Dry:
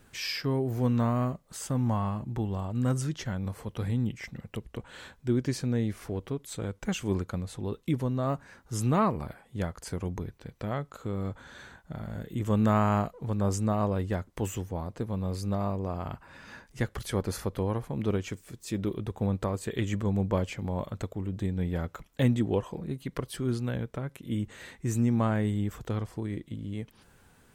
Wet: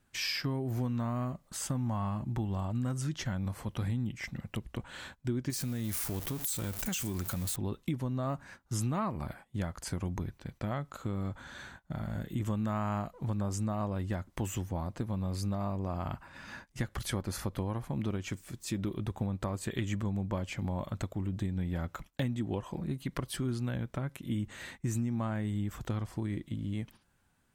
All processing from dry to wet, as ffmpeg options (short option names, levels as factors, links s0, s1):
-filter_complex "[0:a]asettb=1/sr,asplit=3[s0][s1][s2];[s0]atrim=end=5.504[s3];[s1]atrim=start=5.5:end=7.56,asetpts=PTS-STARTPTS,afade=t=in:d=0.004:c=qsin,afade=t=out:st=2.056:d=0.004:c=qsin,aeval=exprs='val(0)+0.5*0.00891*sgn(val(0))':c=same,aemphasis=mode=production:type=75fm,acompressor=threshold=0.0316:ratio=6:attack=3.2:release=140:knee=1:detection=peak[s4];[s2]atrim=start=7.556[s5];[s3][s4]acrossfade=d=0.004:c1=hsin:c2=qsin[s6];[s6][s5]acrossfade=d=0.004:c1=qsin:c2=hsin,agate=range=0.2:threshold=0.00316:ratio=16:detection=peak,equalizer=f=450:t=o:w=0.34:g=-9,acompressor=threshold=0.0282:ratio=6,volume=1.19"